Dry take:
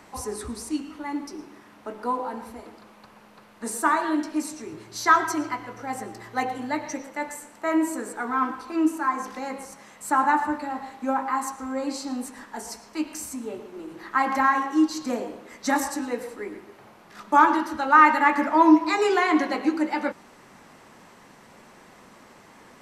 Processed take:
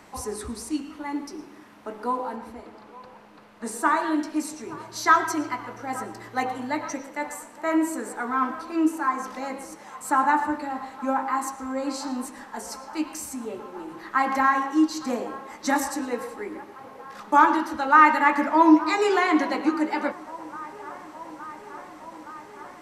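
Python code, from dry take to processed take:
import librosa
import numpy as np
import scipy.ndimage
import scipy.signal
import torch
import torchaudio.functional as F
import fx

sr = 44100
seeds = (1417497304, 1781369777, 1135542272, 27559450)

y = fx.lowpass(x, sr, hz=fx.line((2.35, 3800.0), (3.94, 7100.0)), slope=6, at=(2.35, 3.94), fade=0.02)
y = fx.echo_wet_bandpass(y, sr, ms=868, feedback_pct=79, hz=780.0, wet_db=-18.5)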